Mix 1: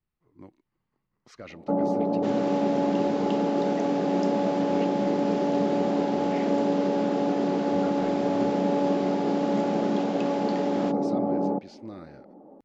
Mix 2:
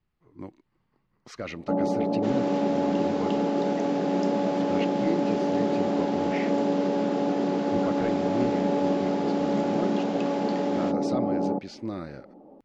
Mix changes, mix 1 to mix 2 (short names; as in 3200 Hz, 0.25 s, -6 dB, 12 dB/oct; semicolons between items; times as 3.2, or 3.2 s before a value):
speech +7.5 dB; first sound: add air absorption 280 m